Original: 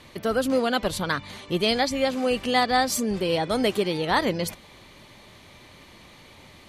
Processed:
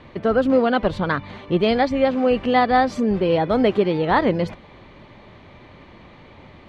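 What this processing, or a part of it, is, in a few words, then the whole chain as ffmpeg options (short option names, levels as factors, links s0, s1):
phone in a pocket: -af "lowpass=3500,highshelf=f=2400:g=-11.5,volume=2.11"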